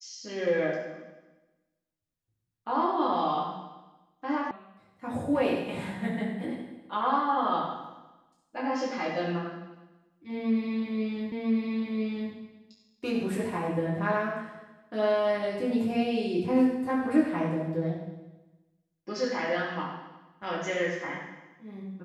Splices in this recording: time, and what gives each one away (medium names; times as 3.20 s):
4.51 s: sound stops dead
11.32 s: repeat of the last 1 s